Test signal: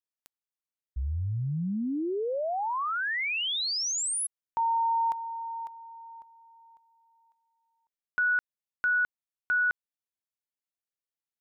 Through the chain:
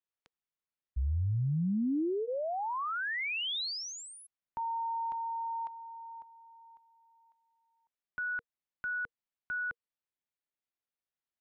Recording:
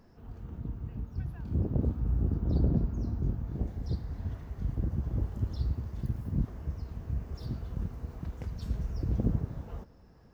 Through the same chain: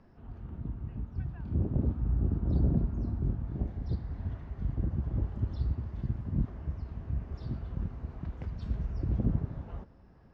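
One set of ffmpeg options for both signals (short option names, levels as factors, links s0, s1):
-filter_complex "[0:a]lowpass=3300,bandreject=f=470:w=12,acrossover=split=280[s0][s1];[s1]alimiter=level_in=2.37:limit=0.0631:level=0:latency=1:release=11,volume=0.422[s2];[s0][s2]amix=inputs=2:normalize=0"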